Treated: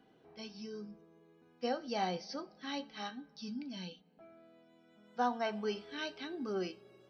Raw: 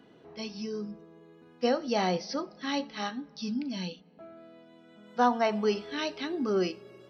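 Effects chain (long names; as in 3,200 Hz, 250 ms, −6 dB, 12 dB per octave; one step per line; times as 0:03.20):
tuned comb filter 770 Hz, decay 0.16 s, harmonics all, mix 80%
level +3.5 dB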